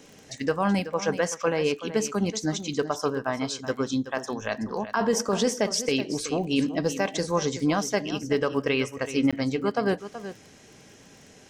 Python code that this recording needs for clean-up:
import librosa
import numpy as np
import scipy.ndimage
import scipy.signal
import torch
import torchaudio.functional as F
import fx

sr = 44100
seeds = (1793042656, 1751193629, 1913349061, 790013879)

y = fx.fix_declick_ar(x, sr, threshold=6.5)
y = fx.fix_interpolate(y, sr, at_s=(9.31,), length_ms=16.0)
y = fx.fix_echo_inverse(y, sr, delay_ms=377, level_db=-12.5)